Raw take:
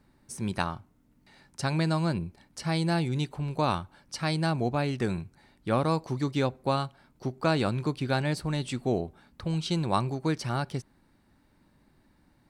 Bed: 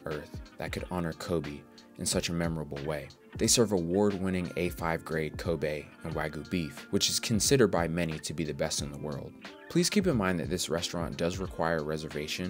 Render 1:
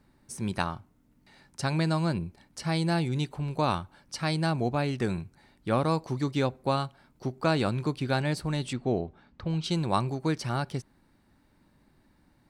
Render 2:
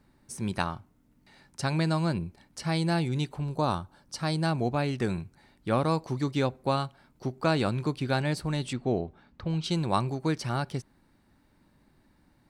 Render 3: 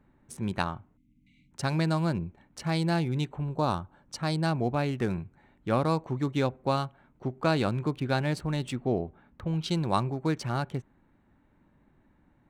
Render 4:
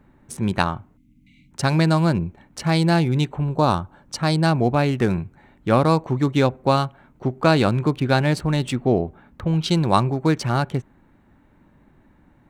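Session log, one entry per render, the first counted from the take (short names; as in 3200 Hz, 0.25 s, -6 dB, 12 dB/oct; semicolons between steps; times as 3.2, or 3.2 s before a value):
8.73–9.64 air absorption 130 m
3.43–4.44 bell 2300 Hz -11.5 dB -> -4.5 dB 0.88 oct
Wiener smoothing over 9 samples; 0.97–1.52 spectral delete 320–2000 Hz
gain +9 dB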